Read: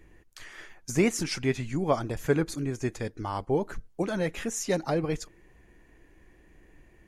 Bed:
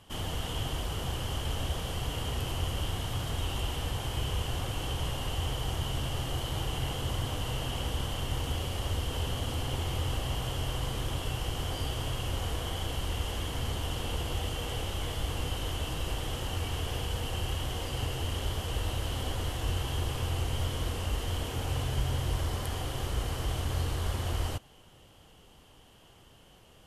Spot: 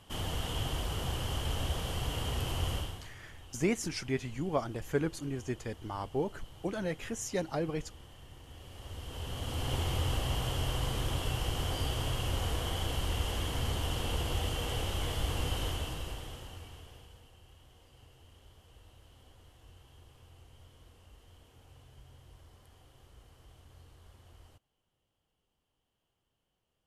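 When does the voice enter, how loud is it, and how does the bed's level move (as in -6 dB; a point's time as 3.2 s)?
2.65 s, -6.0 dB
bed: 2.75 s -1 dB
3.16 s -20 dB
8.44 s -20 dB
9.73 s 0 dB
15.64 s 0 dB
17.36 s -25.5 dB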